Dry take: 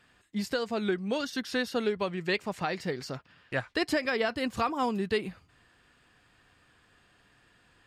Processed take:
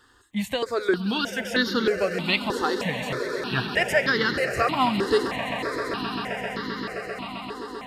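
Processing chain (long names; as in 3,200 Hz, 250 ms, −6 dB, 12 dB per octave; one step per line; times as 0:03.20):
parametric band 3,200 Hz +3.5 dB 1.5 octaves
echo that builds up and dies away 131 ms, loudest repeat 8, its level −15 dB
step-sequenced phaser 3.2 Hz 640–2,500 Hz
level +8.5 dB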